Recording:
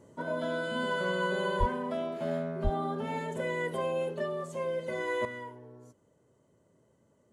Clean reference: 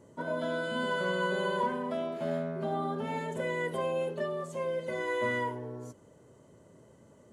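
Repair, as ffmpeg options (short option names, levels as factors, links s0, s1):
-filter_complex "[0:a]asplit=3[s0][s1][s2];[s0]afade=t=out:st=1.59:d=0.02[s3];[s1]highpass=f=140:w=0.5412,highpass=f=140:w=1.3066,afade=t=in:st=1.59:d=0.02,afade=t=out:st=1.71:d=0.02[s4];[s2]afade=t=in:st=1.71:d=0.02[s5];[s3][s4][s5]amix=inputs=3:normalize=0,asplit=3[s6][s7][s8];[s6]afade=t=out:st=2.63:d=0.02[s9];[s7]highpass=f=140:w=0.5412,highpass=f=140:w=1.3066,afade=t=in:st=2.63:d=0.02,afade=t=out:st=2.75:d=0.02[s10];[s8]afade=t=in:st=2.75:d=0.02[s11];[s9][s10][s11]amix=inputs=3:normalize=0,asetnsamples=n=441:p=0,asendcmd='5.25 volume volume 10dB',volume=1"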